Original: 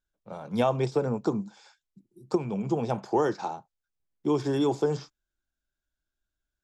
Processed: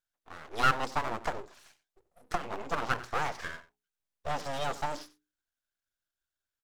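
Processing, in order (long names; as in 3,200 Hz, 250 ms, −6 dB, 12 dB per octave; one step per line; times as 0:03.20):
0:00.63–0:03.06: parametric band 710 Hz +10.5 dB 0.62 octaves
slap from a distant wall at 16 metres, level −16 dB
full-wave rectification
low-shelf EQ 410 Hz −11 dB
mains-hum notches 60/120/180/240/300/360/420 Hz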